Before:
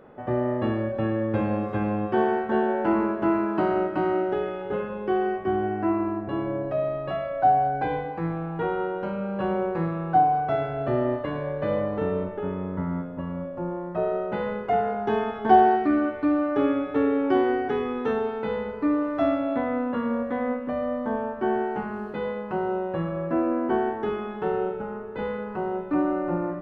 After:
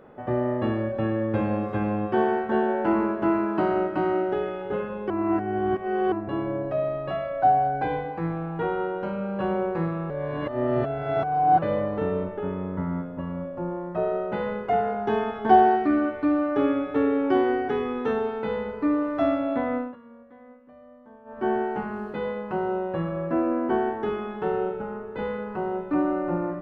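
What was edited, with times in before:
5.1–6.12 reverse
10.1–11.62 reverse
19.75–21.46 dip -22 dB, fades 0.21 s

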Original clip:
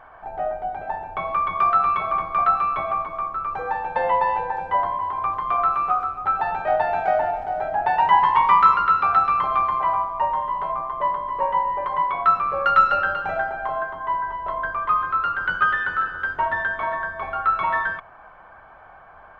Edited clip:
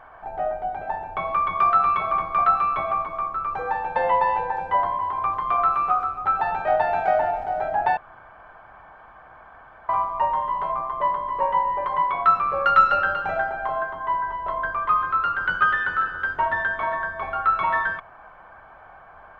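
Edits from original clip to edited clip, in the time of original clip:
7.97–9.89 room tone

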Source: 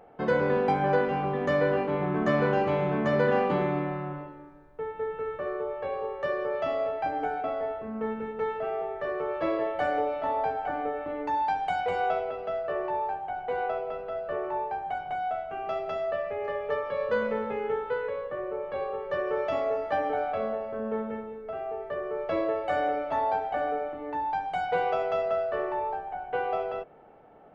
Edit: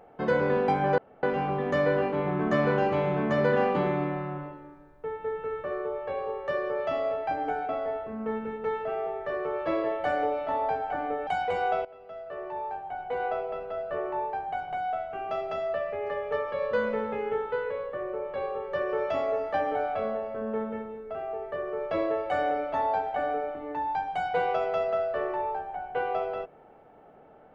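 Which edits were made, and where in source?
0.98 insert room tone 0.25 s
11.02–11.65 cut
12.23–13.66 fade in, from -18 dB

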